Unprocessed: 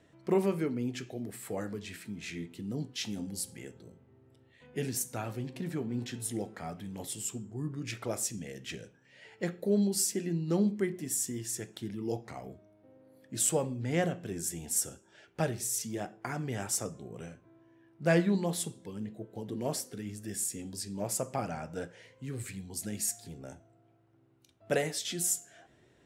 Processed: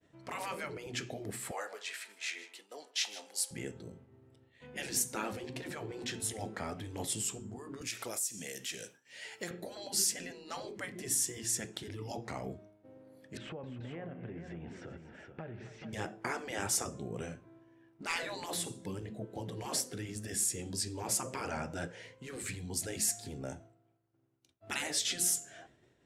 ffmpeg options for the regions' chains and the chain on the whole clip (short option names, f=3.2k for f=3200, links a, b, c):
-filter_complex "[0:a]asettb=1/sr,asplit=3[a][b][c];[a]atrim=end=1.514[d];[b]atrim=start=1.51:end=3.51,asetpts=PTS-STARTPTS,afade=t=in:d=0.004:c=qsin,afade=t=out:st=1.996:d=0.004:c=qsin,highpass=f=600:w=0.5412,highpass=f=600:w=1.3066,aecho=1:1:156:0.15,atrim=end_sample=88200[e];[c]atrim=start=3.506[f];[d][e]acrossfade=d=0.004:c1=hsin:c2=qsin[g];[g][f]acrossfade=d=0.004:c1=qsin:c2=hsin,asettb=1/sr,asplit=3[h][i][j];[h]atrim=end=7.814[k];[i]atrim=start=7.81:end=9.51,asetpts=PTS-STARTPTS,afade=t=in:d=0.004:c=qsin,afade=t=out:st=1.696:d=0.004:c=qsin,aemphasis=mode=production:type=riaa,acompressor=threshold=-43dB:ratio=2.5:attack=3.2:release=140:knee=1:detection=peak[l];[j]atrim=start=9.506[m];[k][l]acrossfade=d=0.004:c1=hsin:c2=qsin[n];[n][m]acrossfade=d=0.004:c1=qsin:c2=hsin,asettb=1/sr,asplit=3[o][p][q];[o]atrim=end=13.374[r];[p]atrim=start=13.37:end=15.93,asetpts=PTS-STARTPTS,afade=t=in:d=0.004:c=qsin,afade=t=out:st=2.556:d=0.004:c=qsin,lowpass=f=2.5k:w=0.5412,lowpass=f=2.5k:w=1.3066,acompressor=threshold=-46dB:ratio=6:attack=3.2:release=140:knee=1:detection=peak,aecho=1:1:263|432:0.2|0.398,atrim=end_sample=112896[s];[q]atrim=start=15.926[t];[r][s]acrossfade=d=0.004:c1=hsin:c2=qsin[u];[u][t]acrossfade=d=0.004:c1=qsin:c2=hsin,asettb=1/sr,asplit=3[v][w][x];[v]atrim=end=18.104[y];[w]atrim=start=18.1:end=18.98,asetpts=PTS-STARTPTS,afade=t=in:d=0.004:c=qsin,afade=t=out:st=0.876:d=0.004:c=qsin,acrossover=split=3600[z][aa];[aa]acompressor=threshold=-41dB:ratio=4:attack=1:release=60[ab];[z][ab]amix=inputs=2:normalize=0,highshelf=f=11k:g=10,bandreject=f=3.2k:w=20[ac];[x]atrim=start=18.976[ad];[y][ac]acrossfade=d=0.004:c1=hsin:c2=qsin[ae];[ae][ad]acrossfade=d=0.004:c1=qsin:c2=hsin,lowpass=11k,afftfilt=real='re*lt(hypot(re,im),0.0631)':imag='im*lt(hypot(re,im),0.0631)':win_size=1024:overlap=0.75,agate=range=-33dB:threshold=-56dB:ratio=3:detection=peak,volume=4.5dB"